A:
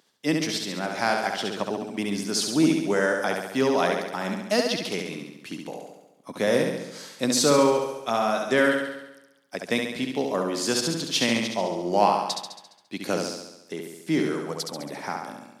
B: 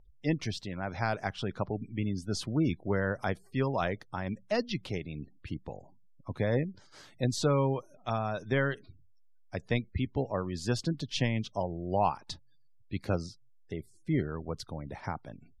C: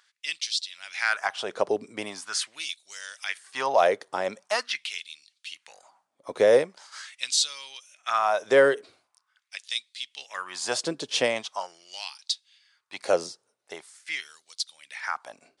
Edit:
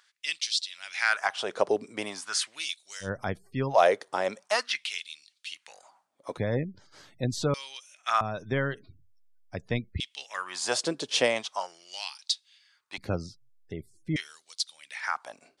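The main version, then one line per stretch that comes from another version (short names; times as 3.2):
C
3.05–3.73 from B, crossfade 0.10 s
6.37–7.54 from B
8.21–10 from B
12.98–14.16 from B
not used: A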